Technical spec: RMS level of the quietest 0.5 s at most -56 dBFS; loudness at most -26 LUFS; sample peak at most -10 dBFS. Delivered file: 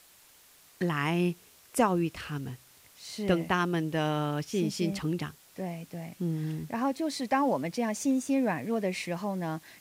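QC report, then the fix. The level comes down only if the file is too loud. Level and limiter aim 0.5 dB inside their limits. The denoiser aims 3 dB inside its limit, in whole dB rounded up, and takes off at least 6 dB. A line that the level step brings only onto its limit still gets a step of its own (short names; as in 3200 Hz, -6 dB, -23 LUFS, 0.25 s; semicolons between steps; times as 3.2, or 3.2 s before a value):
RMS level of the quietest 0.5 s -58 dBFS: OK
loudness -30.5 LUFS: OK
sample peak -12.5 dBFS: OK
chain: none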